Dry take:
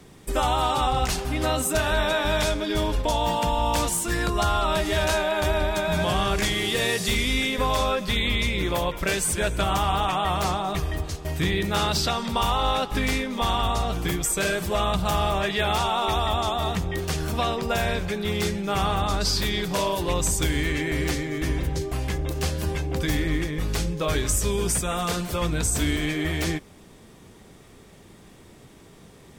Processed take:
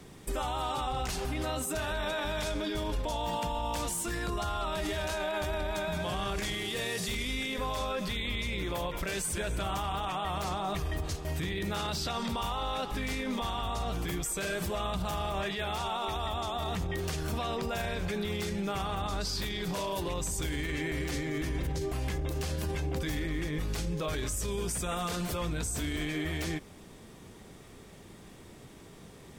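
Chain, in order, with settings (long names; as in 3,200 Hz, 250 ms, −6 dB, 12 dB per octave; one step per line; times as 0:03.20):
brickwall limiter −23.5 dBFS, peak gain reduction 11 dB
level −1.5 dB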